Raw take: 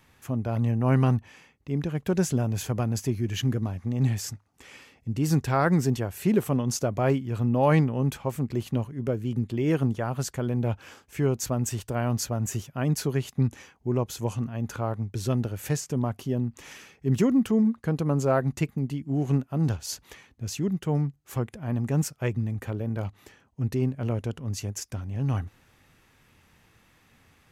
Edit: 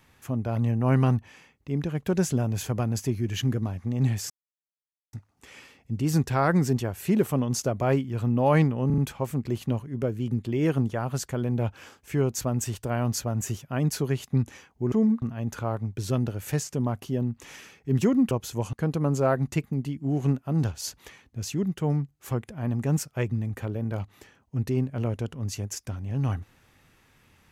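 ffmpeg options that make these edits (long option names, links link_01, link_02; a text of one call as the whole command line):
ffmpeg -i in.wav -filter_complex "[0:a]asplit=9[link_01][link_02][link_03][link_04][link_05][link_06][link_07][link_08][link_09];[link_01]atrim=end=4.3,asetpts=PTS-STARTPTS,afade=type=out:start_time=4.296:duration=0.004:curve=hsin,apad=pad_dur=0.83[link_10];[link_02]atrim=start=4.3:end=8.072,asetpts=PTS-STARTPTS,afade=type=in:duration=0.004:curve=hsin[link_11];[link_03]atrim=start=8.028:end=8.072[link_12];[link_04]atrim=start=8.028:end=8.072[link_13];[link_05]atrim=start=8.028:end=13.972[link_14];[link_06]atrim=start=17.478:end=17.782[link_15];[link_07]atrim=start=14.388:end=17.482[link_16];[link_08]atrim=start=13.968:end=14.392[link_17];[link_09]atrim=start=17.778[link_18];[link_10][link_11]concat=n=2:v=0:a=1[link_19];[link_19][link_12]acrossfade=duration=0.004:curve1=hsin:curve2=hsin[link_20];[link_20][link_13]acrossfade=duration=0.004:curve1=hsin:curve2=hsin[link_21];[link_21][link_14]acrossfade=duration=0.004:curve1=hsin:curve2=hsin[link_22];[link_22][link_15]acrossfade=duration=0.004:curve1=hsin:curve2=hsin[link_23];[link_23][link_16]acrossfade=duration=0.004:curve1=hsin:curve2=hsin[link_24];[link_24][link_17]acrossfade=duration=0.004:curve1=hsin:curve2=hsin[link_25];[link_25][link_18]acrossfade=duration=0.004:curve1=hsin:curve2=hsin" out.wav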